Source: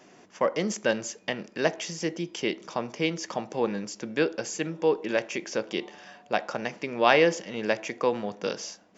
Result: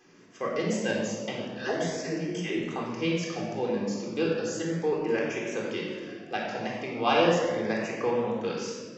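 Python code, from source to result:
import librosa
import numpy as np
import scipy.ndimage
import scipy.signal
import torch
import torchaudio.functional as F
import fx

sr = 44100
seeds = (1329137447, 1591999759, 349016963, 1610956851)

y = fx.dispersion(x, sr, late='lows', ms=148.0, hz=370.0, at=(1.57, 2.58))
y = fx.wow_flutter(y, sr, seeds[0], rate_hz=2.1, depth_cents=68.0)
y = fx.room_shoebox(y, sr, seeds[1], volume_m3=1800.0, walls='mixed', distance_m=3.8)
y = fx.filter_lfo_notch(y, sr, shape='saw_up', hz=0.35, low_hz=620.0, high_hz=5600.0, q=2.6)
y = F.gain(torch.from_numpy(y), -7.5).numpy()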